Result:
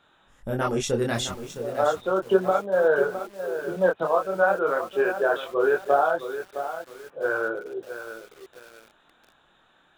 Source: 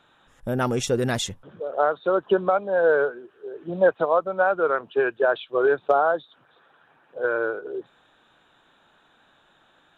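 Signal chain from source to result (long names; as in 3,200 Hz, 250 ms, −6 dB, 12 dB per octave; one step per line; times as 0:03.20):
multi-voice chorus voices 6, 1.2 Hz, delay 24 ms, depth 3 ms
feedback echo at a low word length 662 ms, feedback 35%, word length 7 bits, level −10 dB
level +1.5 dB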